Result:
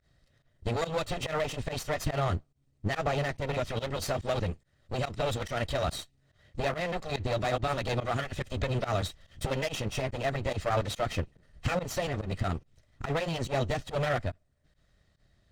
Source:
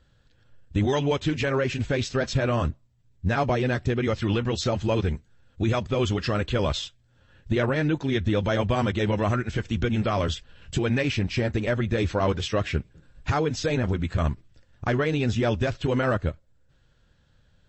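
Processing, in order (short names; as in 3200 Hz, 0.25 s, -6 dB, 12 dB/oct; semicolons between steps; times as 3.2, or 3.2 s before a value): minimum comb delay 1.8 ms; pump 125 bpm, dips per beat 1, -21 dB, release 95 ms; varispeed +14%; gain -3.5 dB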